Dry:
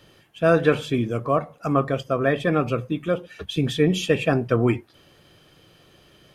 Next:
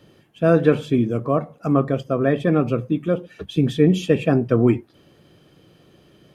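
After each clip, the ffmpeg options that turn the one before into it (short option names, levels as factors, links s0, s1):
-af "equalizer=f=230:t=o:w=2.8:g=10,volume=0.596"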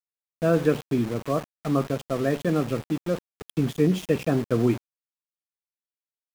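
-af "aeval=exprs='val(0)*gte(abs(val(0)),0.0447)':c=same,volume=0.531"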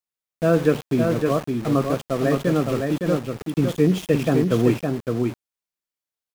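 -af "aecho=1:1:562:0.596,volume=1.41"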